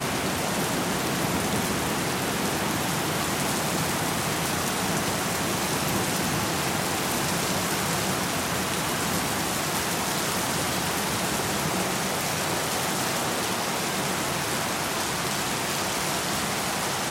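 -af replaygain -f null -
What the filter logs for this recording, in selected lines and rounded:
track_gain = +10.4 dB
track_peak = 0.258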